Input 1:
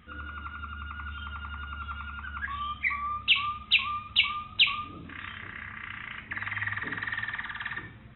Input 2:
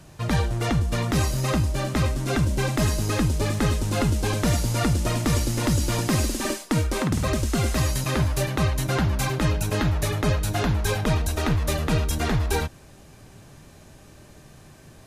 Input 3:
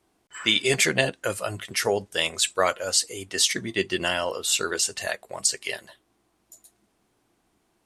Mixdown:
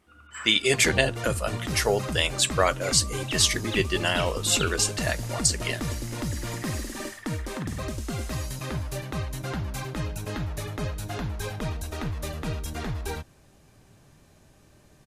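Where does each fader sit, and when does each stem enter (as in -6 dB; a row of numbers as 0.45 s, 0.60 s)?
-13.0 dB, -8.5 dB, 0.0 dB; 0.00 s, 0.55 s, 0.00 s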